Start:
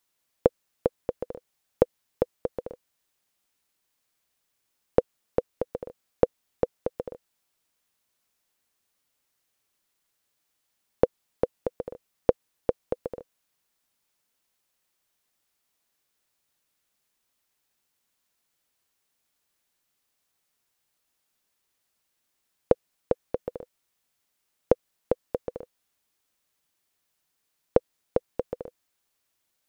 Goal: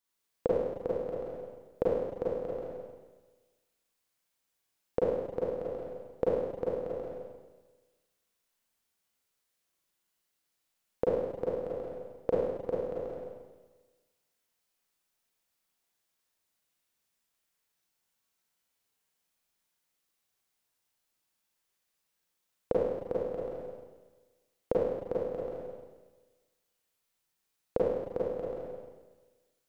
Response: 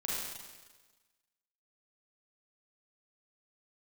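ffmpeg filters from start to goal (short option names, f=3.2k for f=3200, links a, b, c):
-filter_complex "[1:a]atrim=start_sample=2205[a];[0:a][a]afir=irnorm=-1:irlink=0,volume=-8dB"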